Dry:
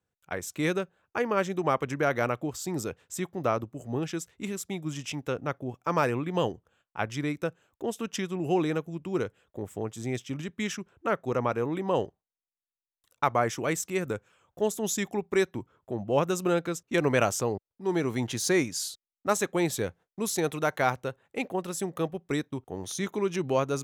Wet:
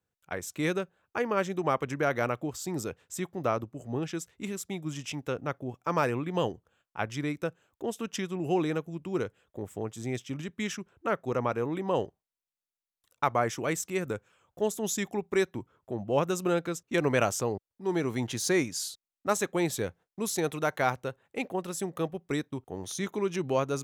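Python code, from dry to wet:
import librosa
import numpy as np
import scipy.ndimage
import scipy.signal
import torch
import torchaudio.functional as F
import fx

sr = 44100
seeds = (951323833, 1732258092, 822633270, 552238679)

y = fx.high_shelf(x, sr, hz=9700.0, db=-5.5, at=(3.64, 4.15))
y = y * librosa.db_to_amplitude(-1.5)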